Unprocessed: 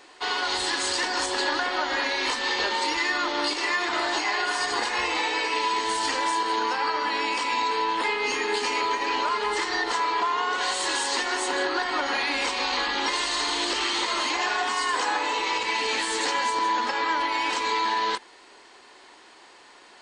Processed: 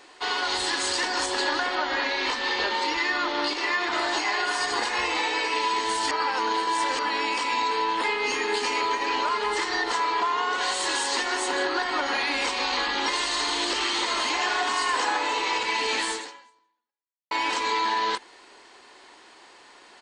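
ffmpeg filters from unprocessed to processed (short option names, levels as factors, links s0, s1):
-filter_complex "[0:a]asettb=1/sr,asplit=3[s0][s1][s2];[s0]atrim=end=1.754[s3];[s1]atrim=start=1.75:end=3.92,asetpts=PTS-STARTPTS,afade=t=in:d=0.004:c=qsin,afade=t=out:st=2.166:d=0.004:c=qsin,lowpass=5400[s4];[s2]atrim=start=3.916[s5];[s3][s4]acrossfade=d=0.004:c1=hsin:c2=qsin[s6];[s6][s5]acrossfade=d=0.004:c1=qsin:c2=hsin,asplit=2[s7][s8];[s8]afade=t=in:st=13.49:d=0.01,afade=t=out:st=14.53:d=0.01,aecho=0:1:560|1120|1680|2240|2800|3360|3920:0.316228|0.189737|0.113842|0.0683052|0.0409831|0.0245899|0.0147539[s9];[s7][s9]amix=inputs=2:normalize=0,asplit=4[s10][s11][s12][s13];[s10]atrim=end=6.112[s14];[s11]atrim=start=6.108:end=6.992,asetpts=PTS-STARTPTS,areverse[s15];[s12]atrim=start=6.988:end=17.31,asetpts=PTS-STARTPTS,afade=t=out:st=9.112:d=1.21:c=exp[s16];[s13]atrim=start=17.31,asetpts=PTS-STARTPTS,afade=t=in:d=0.004:c=hsin[s17];[s14][s15]acrossfade=d=0.004:c1=hsin:c2=hsin[s18];[s16][s17]concat=n=2:v=0:a=1[s19];[s18][s19]acrossfade=d=0.004:c1=hsin:c2=hsin"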